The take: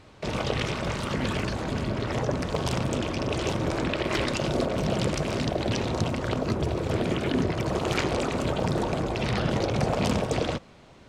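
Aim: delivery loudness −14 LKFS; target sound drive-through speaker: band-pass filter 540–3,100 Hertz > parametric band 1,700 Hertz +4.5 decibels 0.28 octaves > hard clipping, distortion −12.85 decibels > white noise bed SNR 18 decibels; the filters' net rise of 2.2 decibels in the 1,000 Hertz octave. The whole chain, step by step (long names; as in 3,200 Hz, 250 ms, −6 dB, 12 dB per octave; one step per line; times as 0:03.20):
band-pass filter 540–3,100 Hz
parametric band 1,000 Hz +3.5 dB
parametric band 1,700 Hz +4.5 dB 0.28 octaves
hard clipping −26 dBFS
white noise bed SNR 18 dB
level +18 dB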